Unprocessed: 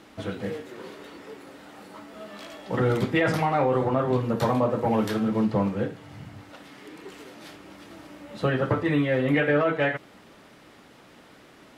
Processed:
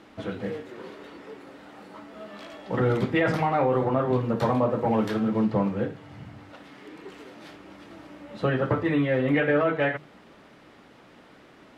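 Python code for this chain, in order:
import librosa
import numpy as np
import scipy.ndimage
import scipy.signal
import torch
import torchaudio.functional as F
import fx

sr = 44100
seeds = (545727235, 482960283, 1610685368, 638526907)

y = fx.high_shelf(x, sr, hz=5800.0, db=-11.5)
y = fx.hum_notches(y, sr, base_hz=50, count=3)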